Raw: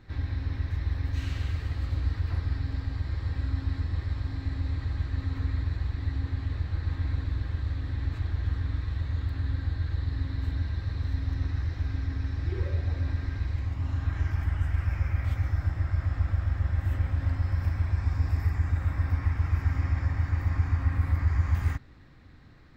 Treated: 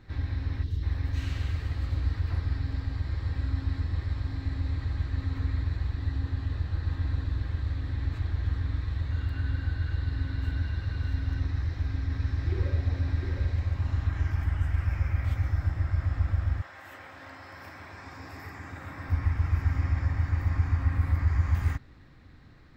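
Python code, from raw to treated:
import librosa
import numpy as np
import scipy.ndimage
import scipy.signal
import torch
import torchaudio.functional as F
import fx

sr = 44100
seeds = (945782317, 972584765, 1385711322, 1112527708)

y = fx.spec_box(x, sr, start_s=0.63, length_s=0.2, low_hz=510.0, high_hz=2700.0, gain_db=-13)
y = fx.notch(y, sr, hz=2200.0, q=12.0, at=(5.93, 7.39))
y = fx.small_body(y, sr, hz=(1500.0, 2800.0), ring_ms=90, db=17, at=(9.11, 11.4))
y = fx.echo_single(y, sr, ms=706, db=-5.0, at=(12.1, 14.07), fade=0.02)
y = fx.highpass(y, sr, hz=fx.line((16.6, 630.0), (19.08, 200.0)), slope=12, at=(16.6, 19.08), fade=0.02)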